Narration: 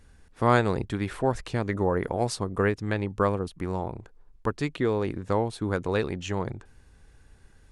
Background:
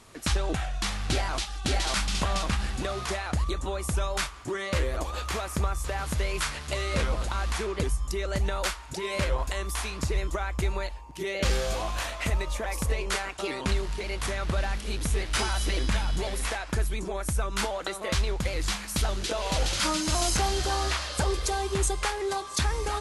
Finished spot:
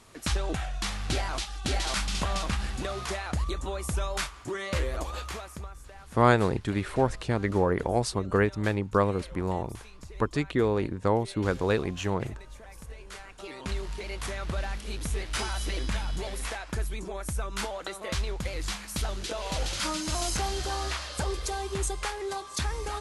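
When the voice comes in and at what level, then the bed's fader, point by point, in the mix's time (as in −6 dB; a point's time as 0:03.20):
5.75 s, +0.5 dB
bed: 0:05.15 −2 dB
0:05.81 −17 dB
0:13.01 −17 dB
0:13.86 −4 dB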